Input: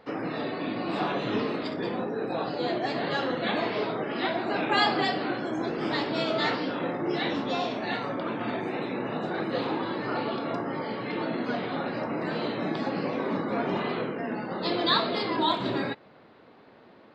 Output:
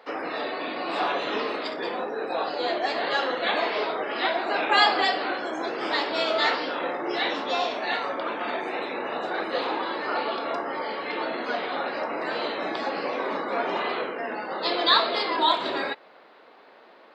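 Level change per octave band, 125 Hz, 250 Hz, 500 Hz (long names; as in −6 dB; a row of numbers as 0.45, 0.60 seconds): −15.0, −5.0, +1.5 decibels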